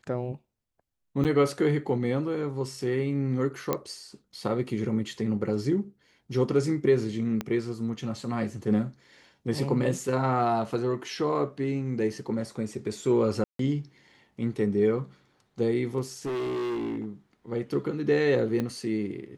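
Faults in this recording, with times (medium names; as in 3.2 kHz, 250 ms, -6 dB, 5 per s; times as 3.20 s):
1.24–1.25 s: dropout 8.2 ms
3.73 s: pop -12 dBFS
7.41 s: pop -16 dBFS
13.44–13.59 s: dropout 153 ms
16.25–17.06 s: clipped -28 dBFS
18.60 s: pop -17 dBFS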